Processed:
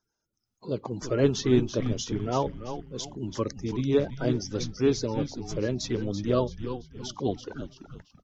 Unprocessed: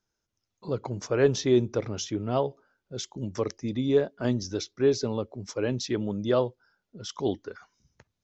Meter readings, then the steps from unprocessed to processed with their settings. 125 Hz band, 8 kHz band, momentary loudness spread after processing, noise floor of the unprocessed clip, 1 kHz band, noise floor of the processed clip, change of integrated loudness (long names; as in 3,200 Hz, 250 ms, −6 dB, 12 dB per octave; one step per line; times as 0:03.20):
+2.0 dB, can't be measured, 13 LU, −83 dBFS, +1.0 dB, −83 dBFS, −0.5 dB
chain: spectral magnitudes quantised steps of 30 dB
echo with shifted repeats 335 ms, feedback 40%, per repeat −130 Hz, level −9 dB